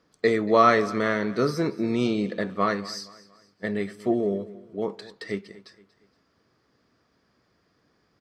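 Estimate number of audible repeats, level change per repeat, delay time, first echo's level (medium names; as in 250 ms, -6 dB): 3, -8.0 dB, 234 ms, -19.0 dB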